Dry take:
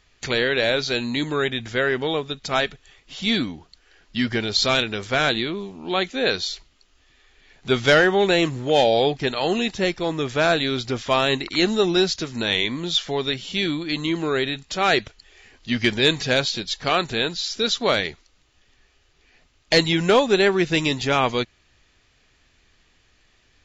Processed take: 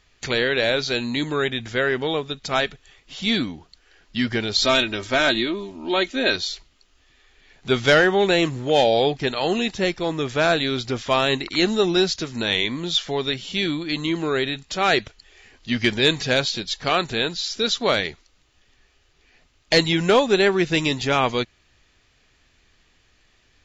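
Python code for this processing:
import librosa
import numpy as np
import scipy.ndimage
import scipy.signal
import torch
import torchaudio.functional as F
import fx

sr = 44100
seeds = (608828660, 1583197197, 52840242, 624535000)

y = fx.comb(x, sr, ms=3.2, depth=0.65, at=(4.61, 6.36))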